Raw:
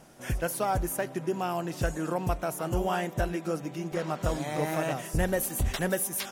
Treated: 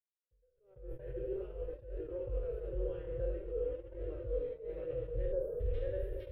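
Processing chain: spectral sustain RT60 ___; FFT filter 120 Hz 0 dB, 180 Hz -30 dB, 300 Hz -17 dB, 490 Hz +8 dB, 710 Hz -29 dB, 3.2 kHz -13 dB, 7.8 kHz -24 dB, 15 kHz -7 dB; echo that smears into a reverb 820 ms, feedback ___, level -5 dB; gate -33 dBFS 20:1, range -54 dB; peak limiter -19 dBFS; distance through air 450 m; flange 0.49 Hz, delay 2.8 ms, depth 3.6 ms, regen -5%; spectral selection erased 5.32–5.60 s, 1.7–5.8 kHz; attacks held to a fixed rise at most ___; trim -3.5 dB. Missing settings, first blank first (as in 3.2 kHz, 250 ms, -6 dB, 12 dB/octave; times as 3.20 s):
0.97 s, 44%, 110 dB/s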